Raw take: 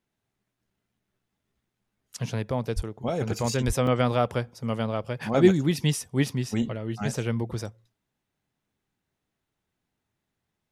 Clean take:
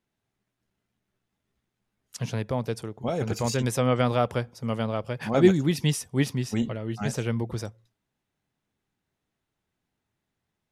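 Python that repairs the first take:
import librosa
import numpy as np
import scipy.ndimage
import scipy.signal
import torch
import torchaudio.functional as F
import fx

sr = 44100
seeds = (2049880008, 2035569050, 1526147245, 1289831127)

y = fx.highpass(x, sr, hz=140.0, slope=24, at=(2.75, 2.87), fade=0.02)
y = fx.highpass(y, sr, hz=140.0, slope=24, at=(3.66, 3.78), fade=0.02)
y = fx.fix_interpolate(y, sr, at_s=(3.87,), length_ms=2.7)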